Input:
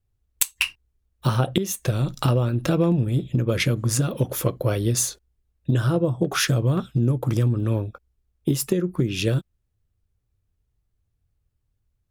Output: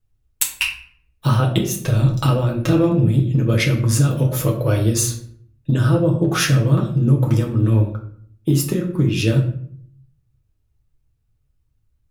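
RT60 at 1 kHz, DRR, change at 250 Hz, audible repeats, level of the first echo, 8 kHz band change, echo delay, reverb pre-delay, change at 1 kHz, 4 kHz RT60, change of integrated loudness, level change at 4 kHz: 0.55 s, −1.0 dB, +5.0 dB, no echo audible, no echo audible, +2.5 dB, no echo audible, 6 ms, +3.5 dB, 0.40 s, +5.0 dB, +2.5 dB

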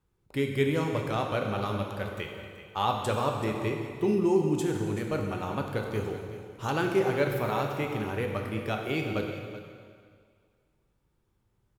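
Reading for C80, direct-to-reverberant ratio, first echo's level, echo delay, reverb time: 4.5 dB, 1.5 dB, −14.0 dB, 380 ms, 2.0 s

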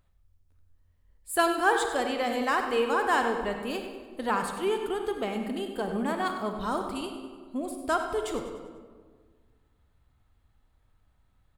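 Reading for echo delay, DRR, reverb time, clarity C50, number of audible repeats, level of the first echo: 98 ms, 4.0 dB, 1.6 s, 4.5 dB, 3, −11.0 dB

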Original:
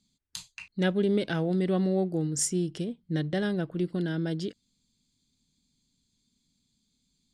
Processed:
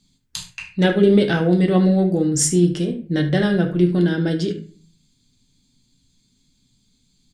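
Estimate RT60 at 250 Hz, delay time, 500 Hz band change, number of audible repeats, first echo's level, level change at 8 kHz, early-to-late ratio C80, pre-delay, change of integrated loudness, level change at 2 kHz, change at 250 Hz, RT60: 0.60 s, 74 ms, +10.5 dB, 1, −14.5 dB, +9.5 dB, 16.0 dB, 6 ms, +11.0 dB, +10.5 dB, +11.5 dB, 0.40 s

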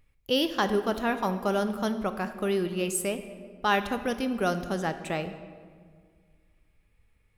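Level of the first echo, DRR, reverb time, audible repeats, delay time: no echo audible, 9.5 dB, 1.8 s, no echo audible, no echo audible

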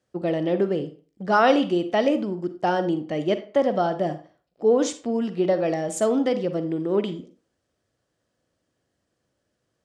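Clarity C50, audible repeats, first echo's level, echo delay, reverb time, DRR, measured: 12.0 dB, no echo audible, no echo audible, no echo audible, 0.40 s, 10.0 dB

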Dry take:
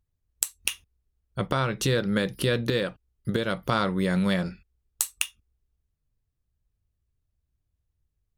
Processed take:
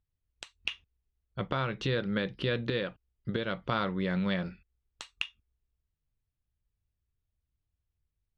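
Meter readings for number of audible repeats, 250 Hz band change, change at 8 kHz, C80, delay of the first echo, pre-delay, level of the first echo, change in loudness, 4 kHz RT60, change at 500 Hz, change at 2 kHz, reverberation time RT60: no echo audible, −6.0 dB, below −25 dB, no reverb audible, no echo audible, no reverb audible, no echo audible, −6.0 dB, no reverb audible, −6.0 dB, −4.5 dB, no reverb audible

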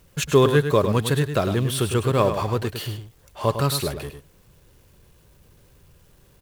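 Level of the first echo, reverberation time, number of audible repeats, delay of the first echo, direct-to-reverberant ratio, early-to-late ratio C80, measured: −9.0 dB, no reverb audible, 1, 104 ms, no reverb audible, no reverb audible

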